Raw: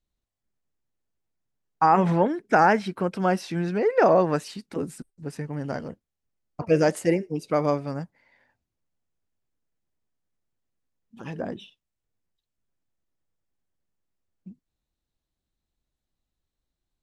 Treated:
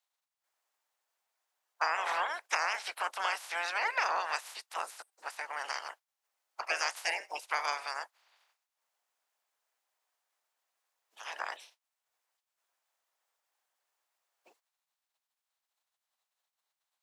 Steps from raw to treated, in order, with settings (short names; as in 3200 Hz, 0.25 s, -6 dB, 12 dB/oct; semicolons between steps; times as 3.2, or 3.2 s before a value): spectral limiter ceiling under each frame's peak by 30 dB; compressor 6:1, threshold -21 dBFS, peak gain reduction 8.5 dB; ladder high-pass 630 Hz, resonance 30%